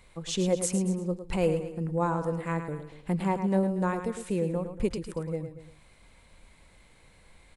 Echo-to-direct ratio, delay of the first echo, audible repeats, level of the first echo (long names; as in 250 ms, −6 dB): −8.0 dB, 108 ms, 3, −9.0 dB